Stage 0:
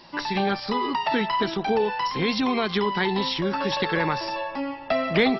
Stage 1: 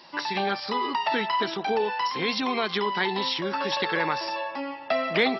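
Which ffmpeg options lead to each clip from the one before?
-af "highpass=f=430:p=1"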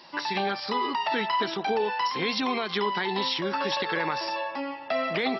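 -af "alimiter=limit=0.141:level=0:latency=1:release=69"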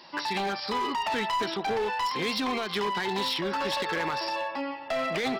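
-af "asoftclip=type=hard:threshold=0.0596"

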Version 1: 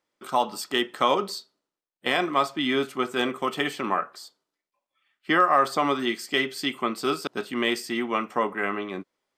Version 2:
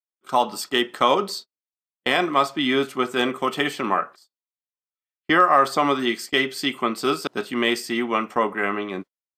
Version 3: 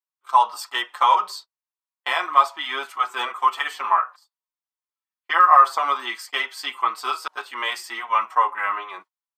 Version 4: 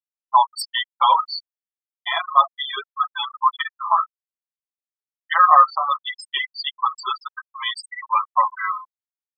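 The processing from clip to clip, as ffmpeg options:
-af "agate=range=0.0178:threshold=0.0112:ratio=16:detection=peak,volume=1.5"
-filter_complex "[0:a]highpass=f=980:t=q:w=3.7,asplit=2[s0][s1];[s1]adelay=5.5,afreqshift=-2.8[s2];[s0][s2]amix=inputs=2:normalize=1,volume=0.891"
-af "aexciter=amount=3.7:drive=2.6:freq=3600,afftfilt=real='re*gte(hypot(re,im),0.178)':imag='im*gte(hypot(re,im),0.178)':win_size=1024:overlap=0.75,volume=1.12"

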